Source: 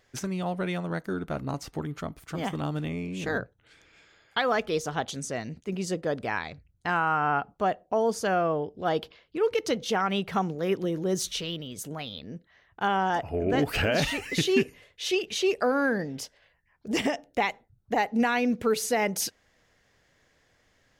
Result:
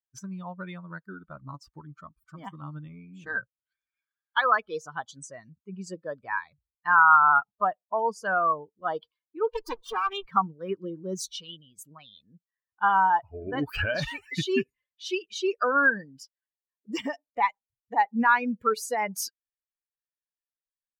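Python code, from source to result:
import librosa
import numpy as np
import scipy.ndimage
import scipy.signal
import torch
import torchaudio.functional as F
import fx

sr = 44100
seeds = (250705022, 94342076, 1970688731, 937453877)

y = fx.lower_of_two(x, sr, delay_ms=2.5, at=(9.5, 10.27))
y = fx.bin_expand(y, sr, power=2.0)
y = fx.band_shelf(y, sr, hz=1200.0, db=13.0, octaves=1.1)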